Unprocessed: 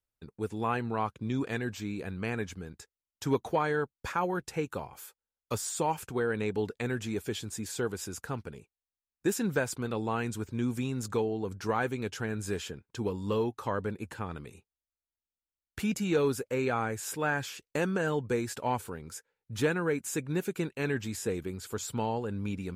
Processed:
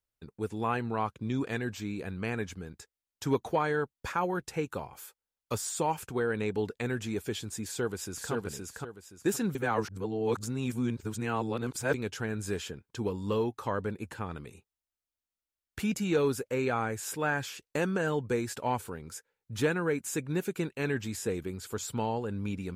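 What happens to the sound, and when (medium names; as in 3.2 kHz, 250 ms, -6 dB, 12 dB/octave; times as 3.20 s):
7.65–8.32 s: echo throw 520 ms, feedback 30%, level -2.5 dB
9.55–11.94 s: reverse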